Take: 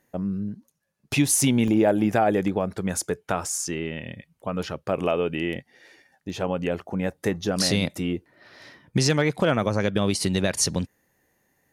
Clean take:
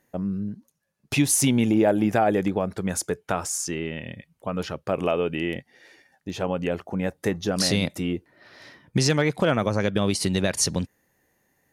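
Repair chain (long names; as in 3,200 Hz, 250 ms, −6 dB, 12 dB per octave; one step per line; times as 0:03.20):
repair the gap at 0:00.80/0:01.68/0:08.34, 1.6 ms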